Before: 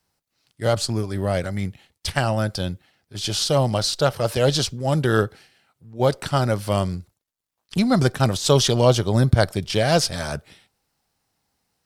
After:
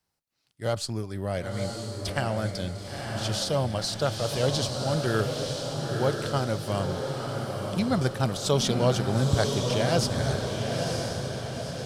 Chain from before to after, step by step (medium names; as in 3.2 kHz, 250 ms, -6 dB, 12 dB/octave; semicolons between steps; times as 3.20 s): echo that smears into a reverb 948 ms, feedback 56%, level -3.5 dB; trim -7.5 dB